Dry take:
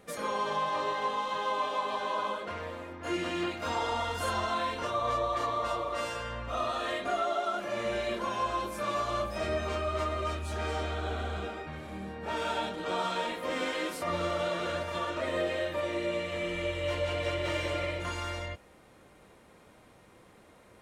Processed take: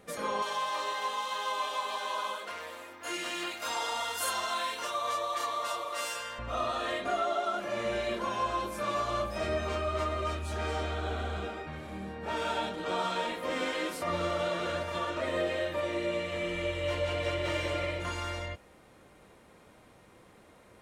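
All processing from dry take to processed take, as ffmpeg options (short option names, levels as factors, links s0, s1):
-filter_complex "[0:a]asettb=1/sr,asplit=3[s0][s1][s2];[s0]atrim=end=0.424[s3];[s1]atrim=start=0.42:end=6.39,asetpts=PTS-STARTPTS,afade=t=in:d=0.004:c=qsin,afade=t=out:st=5.966:d=0.004:c=qsin,highpass=f=860:p=1,aemphasis=mode=production:type=50kf[s4];[s2]atrim=start=6.386[s5];[s3][s4]acrossfade=d=0.004:c1=hsin:c2=qsin[s6];[s6][s5]acrossfade=d=0.004:c1=qsin:c2=hsin"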